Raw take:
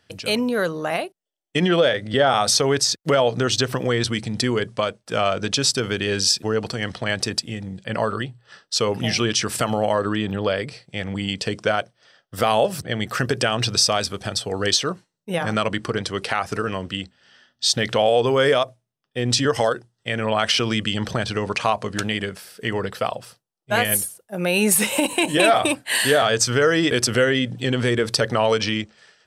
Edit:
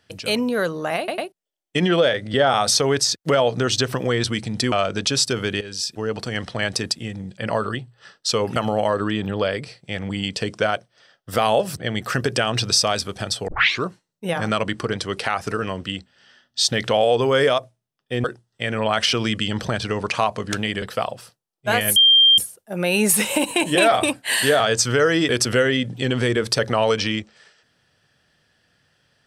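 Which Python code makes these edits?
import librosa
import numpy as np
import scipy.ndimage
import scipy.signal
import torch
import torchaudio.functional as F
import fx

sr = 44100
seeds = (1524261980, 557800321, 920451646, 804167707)

y = fx.edit(x, sr, fx.stutter(start_s=0.98, slice_s=0.1, count=3),
    fx.cut(start_s=4.52, length_s=0.67),
    fx.fade_in_from(start_s=6.08, length_s=0.72, floor_db=-15.5),
    fx.cut(start_s=9.03, length_s=0.58),
    fx.tape_start(start_s=14.53, length_s=0.36),
    fx.cut(start_s=19.29, length_s=0.41),
    fx.cut(start_s=22.28, length_s=0.58),
    fx.insert_tone(at_s=24.0, length_s=0.42, hz=3180.0, db=-9.5), tone=tone)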